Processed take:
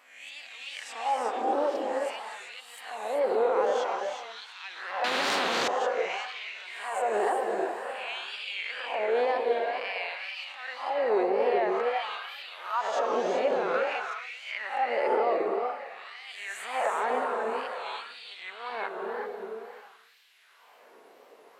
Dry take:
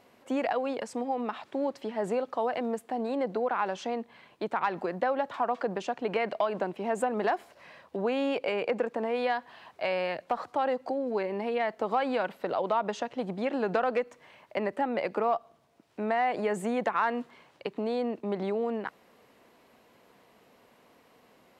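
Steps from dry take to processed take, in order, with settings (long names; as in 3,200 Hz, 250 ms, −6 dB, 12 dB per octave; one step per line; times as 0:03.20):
peak hold with a rise ahead of every peak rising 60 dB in 0.76 s
feedback delay with all-pass diffusion 581 ms, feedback 41%, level −12.5 dB
brickwall limiter −20.5 dBFS, peak gain reduction 8 dB
auto-filter high-pass sine 0.51 Hz 380–3,700 Hz
reverb whose tail is shaped and stops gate 410 ms rising, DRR 1.5 dB
tape wow and flutter 89 cents
0:05.04–0:05.68: every bin compressed towards the loudest bin 4 to 1
level −2.5 dB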